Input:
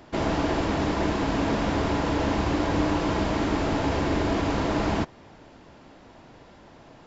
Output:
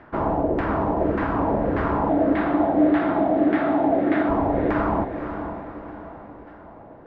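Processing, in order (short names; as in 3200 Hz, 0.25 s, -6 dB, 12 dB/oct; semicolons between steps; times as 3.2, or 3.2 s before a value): LFO low-pass saw down 1.7 Hz 460–1800 Hz; 2.09–4.29 speaker cabinet 200–4900 Hz, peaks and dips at 300 Hz +8 dB, 450 Hz -7 dB, 690 Hz +7 dB, 1000 Hz -9 dB, 2000 Hz +5 dB, 3600 Hz +8 dB; diffused feedback echo 0.517 s, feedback 46%, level -8.5 dB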